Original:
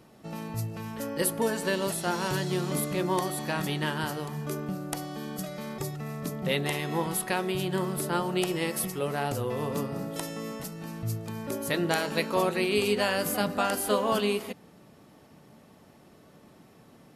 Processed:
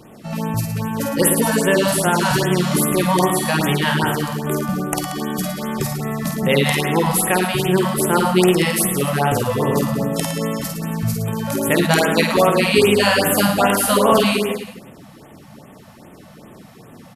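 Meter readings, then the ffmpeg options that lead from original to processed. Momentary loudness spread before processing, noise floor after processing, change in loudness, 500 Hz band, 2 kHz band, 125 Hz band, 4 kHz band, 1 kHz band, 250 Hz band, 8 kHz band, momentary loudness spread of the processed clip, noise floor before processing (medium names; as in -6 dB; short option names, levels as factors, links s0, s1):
10 LU, -43 dBFS, +12.0 dB, +11.0 dB, +12.0 dB, +12.0 dB, +11.5 dB, +12.0 dB, +12.5 dB, +13.0 dB, 9 LU, -56 dBFS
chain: -af "acontrast=76,aecho=1:1:50|110|182|268.4|372.1:0.631|0.398|0.251|0.158|0.1,afftfilt=real='re*(1-between(b*sr/1024,320*pow(5400/320,0.5+0.5*sin(2*PI*2.5*pts/sr))/1.41,320*pow(5400/320,0.5+0.5*sin(2*PI*2.5*pts/sr))*1.41))':imag='im*(1-between(b*sr/1024,320*pow(5400/320,0.5+0.5*sin(2*PI*2.5*pts/sr))/1.41,320*pow(5400/320,0.5+0.5*sin(2*PI*2.5*pts/sr))*1.41))':win_size=1024:overlap=0.75,volume=1.58"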